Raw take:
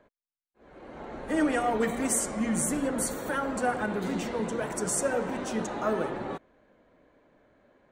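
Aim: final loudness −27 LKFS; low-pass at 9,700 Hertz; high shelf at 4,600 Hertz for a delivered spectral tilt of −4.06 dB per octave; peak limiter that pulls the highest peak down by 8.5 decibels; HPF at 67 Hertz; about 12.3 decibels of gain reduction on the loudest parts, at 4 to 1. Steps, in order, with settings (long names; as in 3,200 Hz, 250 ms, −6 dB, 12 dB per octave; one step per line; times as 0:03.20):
high-pass filter 67 Hz
low-pass filter 9,700 Hz
high-shelf EQ 4,600 Hz +4 dB
downward compressor 4 to 1, threshold −37 dBFS
level +15.5 dB
brickwall limiter −18.5 dBFS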